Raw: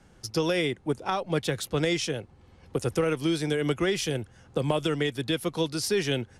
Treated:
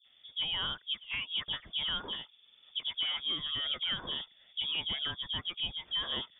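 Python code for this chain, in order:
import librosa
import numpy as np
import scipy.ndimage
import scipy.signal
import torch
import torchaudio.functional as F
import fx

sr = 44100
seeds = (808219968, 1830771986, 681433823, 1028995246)

y = fx.dispersion(x, sr, late='highs', ms=52.0, hz=580.0)
y = fx.freq_invert(y, sr, carrier_hz=3500)
y = y * 10.0 ** (-8.5 / 20.0)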